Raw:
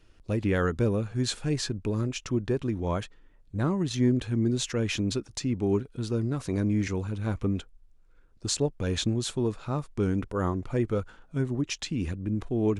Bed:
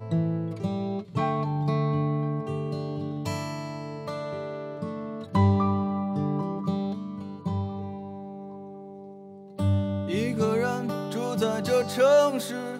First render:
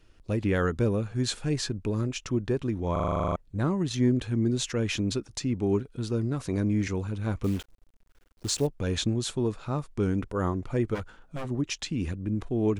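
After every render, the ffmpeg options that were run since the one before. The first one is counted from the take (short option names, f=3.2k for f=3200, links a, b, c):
-filter_complex "[0:a]asettb=1/sr,asplit=3[a][b][c];[a]atrim=end=7.444[d];[b]atrim=start=7.44:end=8.67,asetpts=PTS-STARTPTS,afade=t=in:d=0.004:c=qsin,afade=t=out:st=1.226:d=0.004:c=qsin,acrusher=bits=8:dc=4:mix=0:aa=0.000001[e];[c]atrim=start=8.666[f];[d][e]acrossfade=d=0.004:c1=hsin:c2=qsin[g];[g][f]acrossfade=d=0.004:c1=qsin:c2=hsin,asplit=3[h][i][j];[h]afade=t=out:st=10.94:d=0.02[k];[i]aeval=exprs='0.0398*(abs(mod(val(0)/0.0398+3,4)-2)-1)':c=same,afade=t=in:st=10.94:d=0.02,afade=t=out:st=11.49:d=0.02[l];[j]afade=t=in:st=11.49:d=0.02[m];[k][l][m]amix=inputs=3:normalize=0,asplit=12[n][o][p][q][r][s][t][u][v][w][x][y];[n]atrim=end=2.962[z];[o]atrim=start=2.918:end=2.962[aa];[p]atrim=start=2.918:end=2.962[ab];[q]atrim=start=2.918:end=2.962[ac];[r]atrim=start=2.918:end=2.962[ad];[s]atrim=start=2.918:end=2.962[ae];[t]atrim=start=2.918:end=2.962[af];[u]atrim=start=2.918:end=2.962[ag];[v]atrim=start=2.918:end=2.962[ah];[w]atrim=start=2.918:end=2.962[ai];[x]atrim=start=2.918:end=2.962[aj];[y]atrim=start=3.358[ak];[z][aa]acrossfade=d=0.004:c1=hsin:c2=hsin[al];[al][ab]acrossfade=d=0.004:c1=hsin:c2=hsin[am];[am][ac]acrossfade=d=0.004:c1=hsin:c2=hsin[an];[an][ad]acrossfade=d=0.004:c1=hsin:c2=hsin[ao];[ao][ae]acrossfade=d=0.004:c1=hsin:c2=hsin[ap];[ap][af]acrossfade=d=0.004:c1=hsin:c2=hsin[aq];[aq][ag]acrossfade=d=0.004:c1=hsin:c2=hsin[ar];[ar][ah]acrossfade=d=0.004:c1=hsin:c2=hsin[as];[as][ai]acrossfade=d=0.004:c1=hsin:c2=hsin[at];[at][aj]acrossfade=d=0.004:c1=hsin:c2=hsin[au];[au][ak]acrossfade=d=0.004:c1=hsin:c2=hsin"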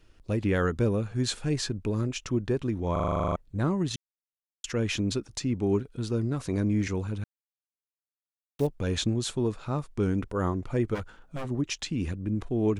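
-filter_complex "[0:a]asplit=5[a][b][c][d][e];[a]atrim=end=3.96,asetpts=PTS-STARTPTS,afade=t=out:st=3.956:d=0.004:c=hsin[f];[b]atrim=start=3.96:end=4.64,asetpts=PTS-STARTPTS,volume=0[g];[c]atrim=start=4.64:end=7.24,asetpts=PTS-STARTPTS,afade=t=in:d=0.004:c=hsin,afade=t=out:st=2.596:d=0.004:c=hsin[h];[d]atrim=start=7.24:end=8.59,asetpts=PTS-STARTPTS,volume=0[i];[e]atrim=start=8.59,asetpts=PTS-STARTPTS,afade=t=in:d=0.004:c=hsin[j];[f][g][h][i][j]concat=n=5:v=0:a=1"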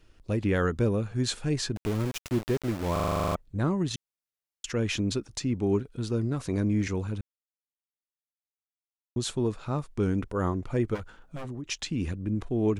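-filter_complex "[0:a]asettb=1/sr,asplit=3[a][b][c];[a]atrim=end=1.764[d];[b]atrim=start=1.76:end=3.35,asetpts=PTS-STARTPTS,afade=t=in:d=0.004:c=qsin,afade=t=out:st=1.586:d=0.004:c=qsin,aeval=exprs='val(0)*gte(abs(val(0)),0.0251)':c=same[e];[c]atrim=start=3.346[f];[d][e]acrossfade=d=0.004:c1=hsin:c2=qsin[g];[g][f]acrossfade=d=0.004:c1=qsin:c2=hsin,asplit=3[h][i][j];[h]afade=t=out:st=10.96:d=0.02[k];[i]acompressor=threshold=-33dB:ratio=6:attack=3.2:release=140:knee=1:detection=peak,afade=t=in:st=10.96:d=0.02,afade=t=out:st=11.65:d=0.02[l];[j]afade=t=in:st=11.65:d=0.02[m];[k][l][m]amix=inputs=3:normalize=0,asplit=3[n][o][p];[n]atrim=end=7.21,asetpts=PTS-STARTPTS,afade=t=out:st=7.206:d=0.004:c=hsin[q];[o]atrim=start=7.21:end=9.16,asetpts=PTS-STARTPTS,volume=0[r];[p]atrim=start=9.16,asetpts=PTS-STARTPTS,afade=t=in:d=0.004:c=hsin[s];[q][r][s]concat=n=3:v=0:a=1"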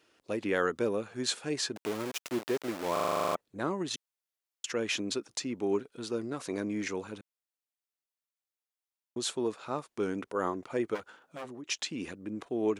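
-af "highpass=350"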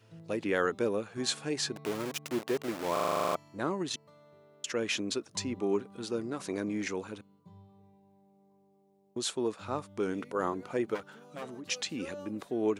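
-filter_complex "[1:a]volume=-25.5dB[a];[0:a][a]amix=inputs=2:normalize=0"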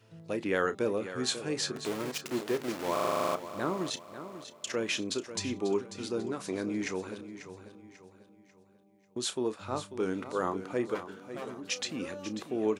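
-filter_complex "[0:a]asplit=2[a][b];[b]adelay=32,volume=-13.5dB[c];[a][c]amix=inputs=2:normalize=0,asplit=2[d][e];[e]aecho=0:1:542|1084|1626|2168:0.251|0.098|0.0382|0.0149[f];[d][f]amix=inputs=2:normalize=0"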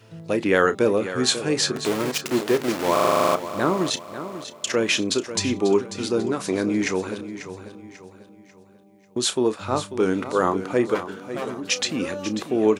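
-af "volume=10.5dB"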